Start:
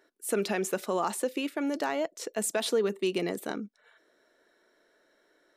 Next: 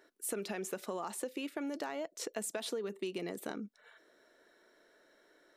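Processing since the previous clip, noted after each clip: compression, threshold -37 dBFS, peak gain reduction 13.5 dB; trim +1 dB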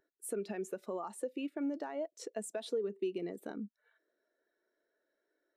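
spectral contrast expander 1.5:1; trim -2 dB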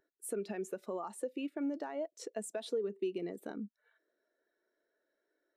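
no audible change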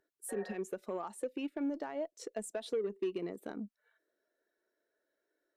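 Chebyshev shaper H 4 -44 dB, 5 -26 dB, 7 -25 dB, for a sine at -25.5 dBFS; spectral replace 0.32–0.53 s, 470–1900 Hz after

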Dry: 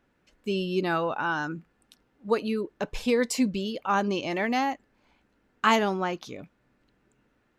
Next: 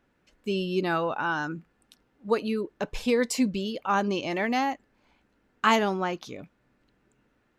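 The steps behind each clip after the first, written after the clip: no audible change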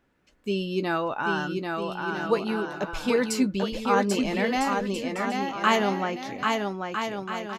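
doubling 15 ms -12.5 dB; on a send: bouncing-ball echo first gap 790 ms, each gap 0.65×, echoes 5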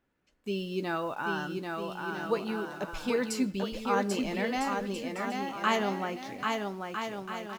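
in parallel at -8 dB: bit crusher 7-bit; on the sum: algorithmic reverb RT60 0.8 s, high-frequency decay 0.9×, pre-delay 5 ms, DRR 19.5 dB; trim -8.5 dB

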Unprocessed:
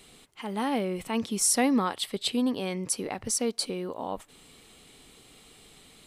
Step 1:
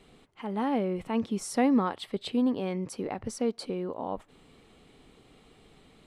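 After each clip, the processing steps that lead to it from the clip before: low-pass 1.2 kHz 6 dB/octave; trim +1 dB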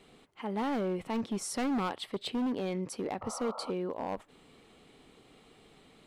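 bass shelf 120 Hz -8.5 dB; overload inside the chain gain 28 dB; painted sound noise, 3.21–3.71 s, 470–1400 Hz -43 dBFS

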